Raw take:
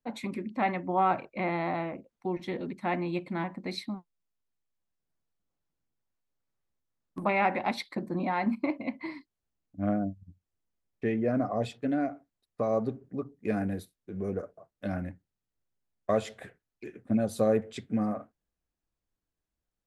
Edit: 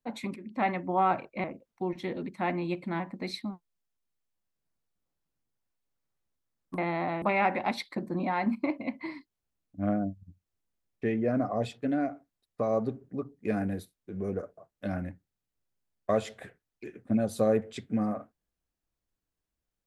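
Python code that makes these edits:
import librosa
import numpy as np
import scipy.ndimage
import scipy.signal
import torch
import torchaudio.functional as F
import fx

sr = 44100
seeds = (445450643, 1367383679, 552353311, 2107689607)

y = fx.edit(x, sr, fx.fade_in_from(start_s=0.36, length_s=0.25, floor_db=-13.5),
    fx.move(start_s=1.44, length_s=0.44, to_s=7.22), tone=tone)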